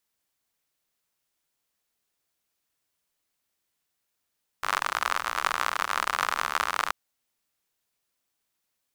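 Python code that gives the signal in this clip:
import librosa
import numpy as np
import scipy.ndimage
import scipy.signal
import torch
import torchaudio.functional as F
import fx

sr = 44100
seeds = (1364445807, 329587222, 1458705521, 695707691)

y = fx.rain(sr, seeds[0], length_s=2.28, drops_per_s=68.0, hz=1200.0, bed_db=-23.5)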